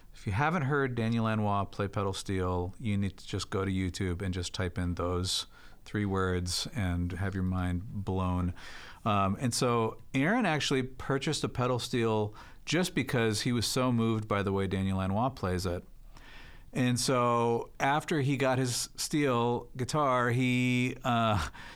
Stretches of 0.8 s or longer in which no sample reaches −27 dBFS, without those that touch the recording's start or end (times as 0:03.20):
0:15.77–0:16.76